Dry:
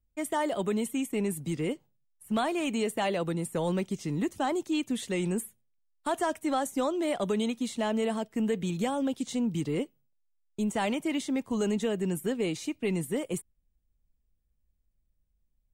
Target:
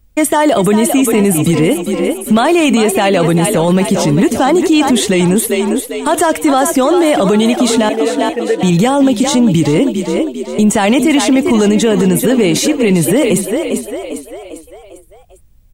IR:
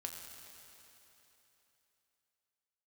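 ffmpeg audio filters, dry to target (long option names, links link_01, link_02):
-filter_complex "[0:a]asettb=1/sr,asplit=3[link_01][link_02][link_03];[link_01]atrim=end=7.894[link_04];[link_02]atrim=start=7.89:end=8.63,asetpts=PTS-STARTPTS,afade=type=in:duration=0.004:curve=qsin,afade=type=out:start_time=0.736:duration=0.004:curve=qsin,asplit=3[link_05][link_06][link_07];[link_05]bandpass=frequency=530:width_type=q:width=8,volume=0dB[link_08];[link_06]bandpass=frequency=1840:width_type=q:width=8,volume=-6dB[link_09];[link_07]bandpass=frequency=2480:width_type=q:width=8,volume=-9dB[link_10];[link_08][link_09][link_10]amix=inputs=3:normalize=0[link_11];[link_03]atrim=start=8.626[link_12];[link_04][link_11]acrossfade=duration=0.004:curve1=hsin:curve2=qsin[link_13];[link_13][link_12]acrossfade=duration=0.004:curve1=qsin:curve2=hsin,asplit=6[link_14][link_15][link_16][link_17][link_18][link_19];[link_15]adelay=399,afreqshift=39,volume=-11dB[link_20];[link_16]adelay=798,afreqshift=78,volume=-17.6dB[link_21];[link_17]adelay=1197,afreqshift=117,volume=-24.1dB[link_22];[link_18]adelay=1596,afreqshift=156,volume=-30.7dB[link_23];[link_19]adelay=1995,afreqshift=195,volume=-37.2dB[link_24];[link_14][link_20][link_21][link_22][link_23][link_24]amix=inputs=6:normalize=0,alimiter=level_in=28dB:limit=-1dB:release=50:level=0:latency=1,volume=-2.5dB"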